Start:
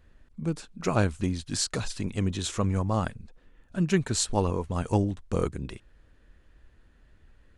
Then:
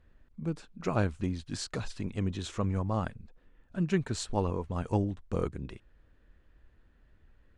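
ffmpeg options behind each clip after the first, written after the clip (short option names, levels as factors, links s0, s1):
-af "aemphasis=mode=reproduction:type=50kf,volume=0.631"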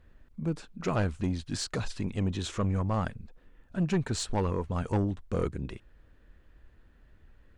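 -af "asoftclip=type=tanh:threshold=0.0596,volume=1.58"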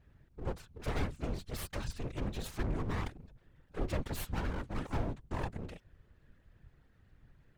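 -af "aeval=exprs='abs(val(0))':c=same,afftfilt=real='hypot(re,im)*cos(2*PI*random(0))':imag='hypot(re,im)*sin(2*PI*random(1))':win_size=512:overlap=0.75,volume=1.19"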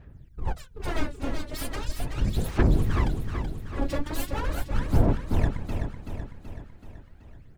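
-af "aphaser=in_gain=1:out_gain=1:delay=3.6:decay=0.75:speed=0.39:type=sinusoidal,aecho=1:1:379|758|1137|1516|1895|2274|2653:0.447|0.246|0.135|0.0743|0.0409|0.0225|0.0124,volume=1.41"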